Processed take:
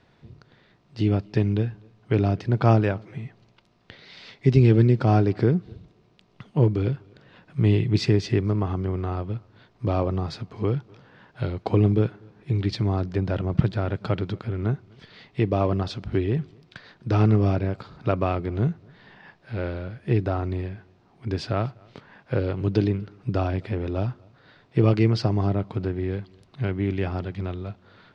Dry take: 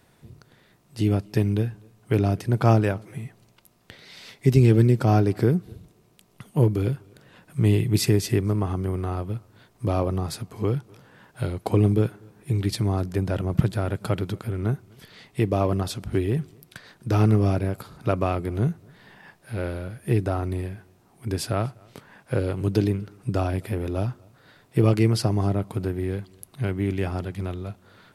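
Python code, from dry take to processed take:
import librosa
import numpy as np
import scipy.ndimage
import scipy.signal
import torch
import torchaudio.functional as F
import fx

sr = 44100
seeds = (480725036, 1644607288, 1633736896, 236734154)

y = scipy.signal.sosfilt(scipy.signal.butter(4, 5000.0, 'lowpass', fs=sr, output='sos'), x)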